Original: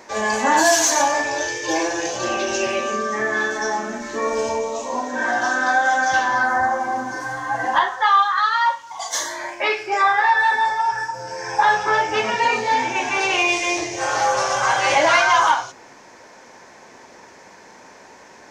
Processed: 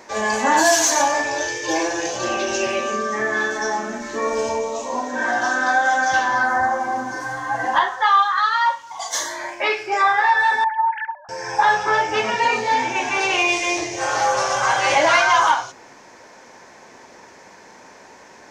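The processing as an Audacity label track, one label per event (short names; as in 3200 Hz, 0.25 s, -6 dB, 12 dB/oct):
10.640000	11.290000	sine-wave speech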